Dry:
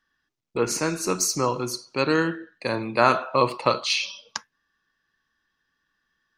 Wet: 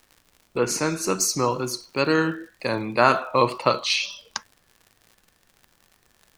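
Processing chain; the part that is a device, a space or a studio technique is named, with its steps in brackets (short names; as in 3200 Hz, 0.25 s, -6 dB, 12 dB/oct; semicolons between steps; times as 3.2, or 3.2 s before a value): vinyl LP (wow and flutter; crackle 83/s -40 dBFS; pink noise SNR 40 dB); gain +1 dB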